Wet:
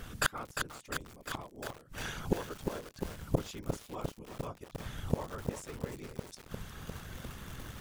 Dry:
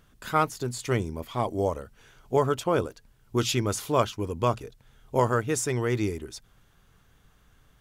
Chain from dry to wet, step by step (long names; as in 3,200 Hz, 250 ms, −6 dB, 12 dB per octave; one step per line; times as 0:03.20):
random phases in short frames
gate with flip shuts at −29 dBFS, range −34 dB
feedback echo at a low word length 352 ms, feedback 80%, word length 10 bits, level −5 dB
level +15 dB